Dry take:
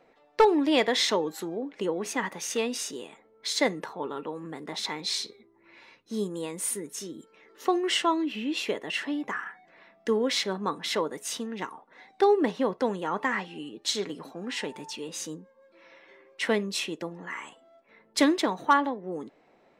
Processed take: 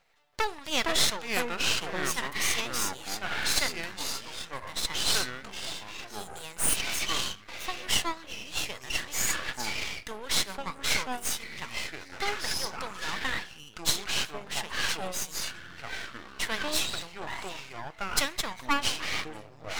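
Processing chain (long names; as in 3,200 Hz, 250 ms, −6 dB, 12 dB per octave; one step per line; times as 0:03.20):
guitar amp tone stack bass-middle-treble 10-0-10
delay with pitch and tempo change per echo 327 ms, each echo −5 semitones, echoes 3
high-shelf EQ 11,000 Hz +6.5 dB
half-wave rectification
level +7 dB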